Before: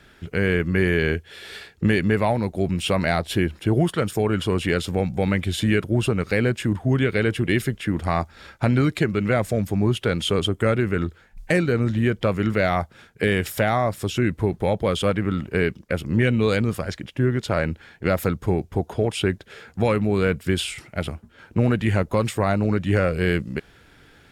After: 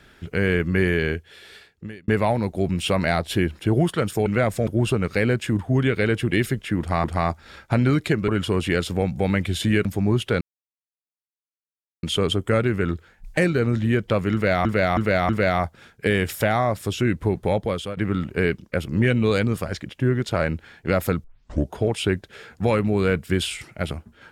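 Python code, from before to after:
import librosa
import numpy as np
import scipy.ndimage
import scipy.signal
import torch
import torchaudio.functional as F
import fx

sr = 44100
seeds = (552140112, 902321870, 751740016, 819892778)

y = fx.edit(x, sr, fx.fade_out_span(start_s=0.81, length_s=1.27),
    fx.swap(start_s=4.26, length_s=1.57, other_s=9.19, other_length_s=0.41),
    fx.repeat(start_s=7.95, length_s=0.25, count=2),
    fx.insert_silence(at_s=10.16, length_s=1.62),
    fx.repeat(start_s=12.46, length_s=0.32, count=4),
    fx.fade_out_to(start_s=14.73, length_s=0.41, floor_db=-15.0),
    fx.tape_start(start_s=18.41, length_s=0.48), tone=tone)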